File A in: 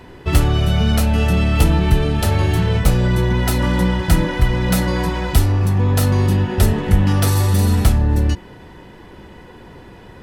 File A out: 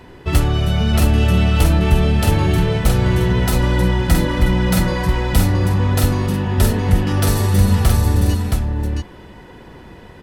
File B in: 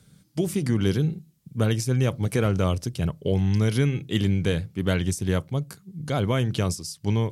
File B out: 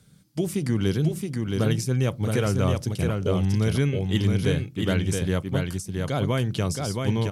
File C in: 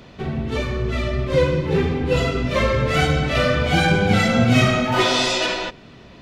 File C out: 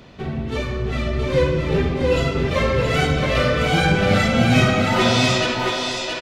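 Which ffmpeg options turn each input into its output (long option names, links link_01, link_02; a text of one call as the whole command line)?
ffmpeg -i in.wav -af "aecho=1:1:671:0.631,volume=-1dB" out.wav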